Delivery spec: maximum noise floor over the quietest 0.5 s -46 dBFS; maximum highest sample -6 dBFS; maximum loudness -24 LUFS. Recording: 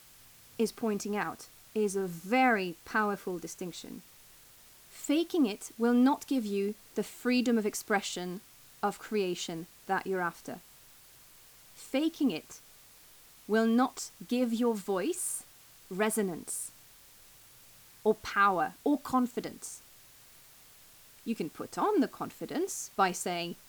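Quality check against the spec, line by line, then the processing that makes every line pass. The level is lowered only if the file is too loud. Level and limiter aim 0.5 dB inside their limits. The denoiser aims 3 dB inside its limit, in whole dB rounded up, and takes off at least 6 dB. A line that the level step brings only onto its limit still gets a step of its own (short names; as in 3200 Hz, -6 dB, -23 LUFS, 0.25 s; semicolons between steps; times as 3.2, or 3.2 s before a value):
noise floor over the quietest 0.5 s -57 dBFS: OK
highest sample -14.5 dBFS: OK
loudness -31.5 LUFS: OK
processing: none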